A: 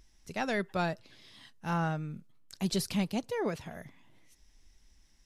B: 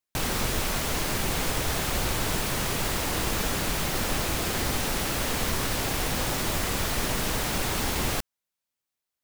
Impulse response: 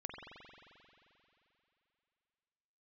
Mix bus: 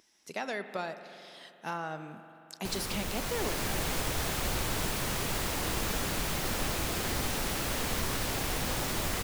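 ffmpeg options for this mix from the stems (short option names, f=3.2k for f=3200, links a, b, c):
-filter_complex "[0:a]highpass=310,acompressor=threshold=-35dB:ratio=6,volume=0.5dB,asplit=2[a][b];[b]volume=-3.5dB[c];[1:a]dynaudnorm=f=180:g=9:m=6dB,adelay=2500,volume=-10.5dB[d];[2:a]atrim=start_sample=2205[e];[c][e]afir=irnorm=-1:irlink=0[f];[a][d][f]amix=inputs=3:normalize=0"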